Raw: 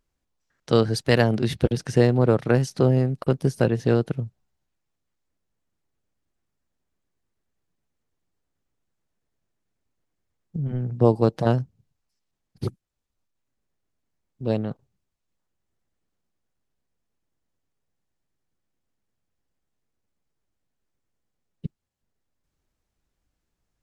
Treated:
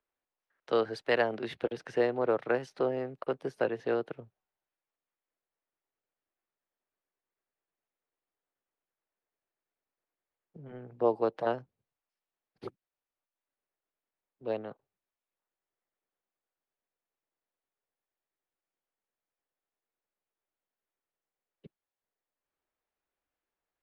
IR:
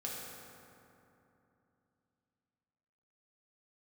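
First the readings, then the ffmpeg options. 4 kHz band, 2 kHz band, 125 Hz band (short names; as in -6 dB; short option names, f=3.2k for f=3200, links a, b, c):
-11.0 dB, -5.0 dB, -26.0 dB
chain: -filter_complex "[0:a]acrossover=split=360 3300:gain=0.1 1 0.112[a][b][c];[a][b][c]amix=inputs=3:normalize=0,acrossover=split=140|1100[d][e][f];[d]alimiter=level_in=22dB:limit=-24dB:level=0:latency=1,volume=-22dB[g];[g][e][f]amix=inputs=3:normalize=0,volume=-4.5dB"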